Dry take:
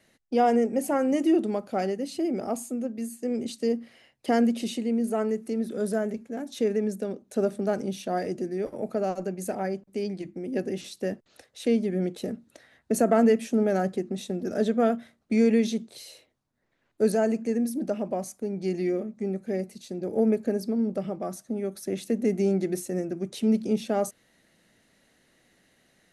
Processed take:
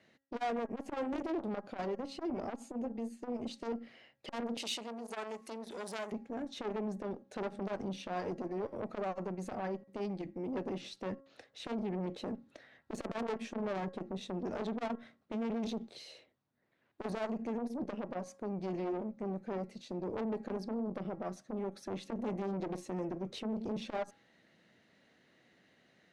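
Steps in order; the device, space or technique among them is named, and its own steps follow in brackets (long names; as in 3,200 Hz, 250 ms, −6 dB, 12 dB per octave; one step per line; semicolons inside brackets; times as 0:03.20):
valve radio (band-pass filter 97–4,100 Hz; tube saturation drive 29 dB, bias 0.35; saturating transformer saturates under 370 Hz)
hum removal 273.4 Hz, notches 7
0:04.57–0:06.12: spectral tilt +4.5 dB per octave
level −1 dB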